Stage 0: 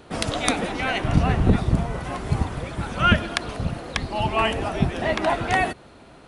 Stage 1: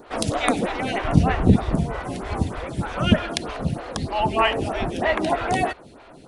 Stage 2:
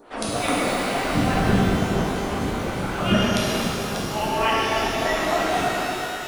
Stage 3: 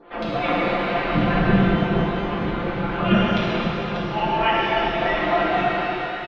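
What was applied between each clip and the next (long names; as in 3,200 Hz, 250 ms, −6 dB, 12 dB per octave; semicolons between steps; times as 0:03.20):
phaser with staggered stages 3.2 Hz; level +4.5 dB
parametric band 80 Hz −7.5 dB 1.9 octaves; speech leveller within 3 dB 2 s; reverb with rising layers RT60 3.1 s, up +12 semitones, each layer −8 dB, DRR −7 dB; level −7 dB
low-pass filter 3,300 Hz 24 dB per octave; comb filter 5.8 ms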